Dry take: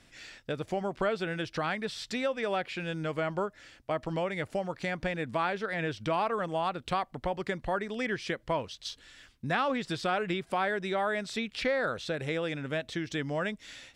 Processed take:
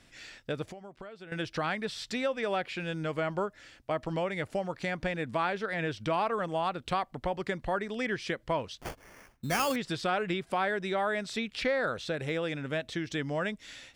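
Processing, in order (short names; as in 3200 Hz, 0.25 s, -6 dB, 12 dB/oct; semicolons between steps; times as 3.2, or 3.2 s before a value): 0.67–1.32 compressor 5:1, threshold -45 dBFS, peak gain reduction 18 dB; 8.81–9.76 sample-rate reducer 3900 Hz, jitter 0%; 12.01–12.58 de-esser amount 100%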